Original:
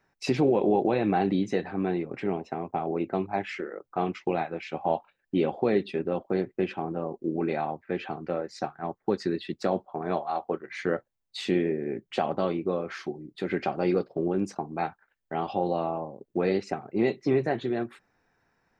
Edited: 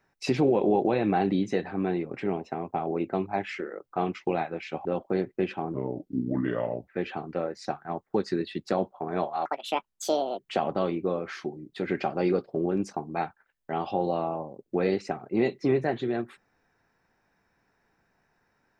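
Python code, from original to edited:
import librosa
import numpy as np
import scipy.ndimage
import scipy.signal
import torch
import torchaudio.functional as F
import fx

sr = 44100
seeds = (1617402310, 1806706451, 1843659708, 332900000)

y = fx.edit(x, sr, fx.cut(start_s=4.85, length_s=1.2),
    fx.speed_span(start_s=6.94, length_s=0.88, speed=0.77),
    fx.speed_span(start_s=10.39, length_s=1.62, speed=1.73), tone=tone)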